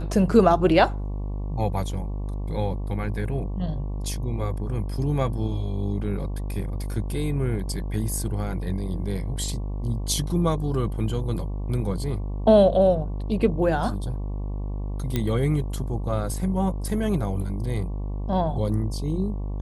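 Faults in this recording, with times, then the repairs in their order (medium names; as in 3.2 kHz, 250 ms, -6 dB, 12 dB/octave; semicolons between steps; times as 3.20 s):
buzz 50 Hz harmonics 23 -29 dBFS
15.16 s: pop -11 dBFS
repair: de-click; de-hum 50 Hz, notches 23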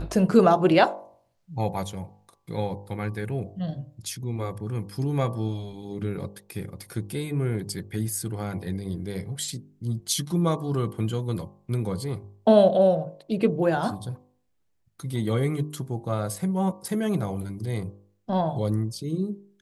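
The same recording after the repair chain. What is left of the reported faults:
nothing left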